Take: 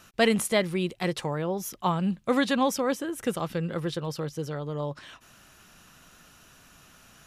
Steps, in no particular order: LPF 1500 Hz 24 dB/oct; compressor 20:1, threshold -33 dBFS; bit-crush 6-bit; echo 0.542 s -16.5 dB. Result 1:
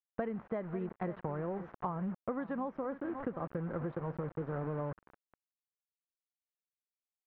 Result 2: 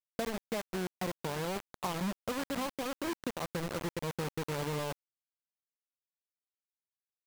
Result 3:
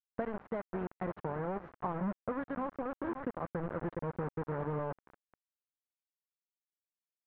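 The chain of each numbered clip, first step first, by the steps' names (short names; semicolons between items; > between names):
echo > bit-crush > LPF > compressor; LPF > compressor > echo > bit-crush; echo > compressor > bit-crush > LPF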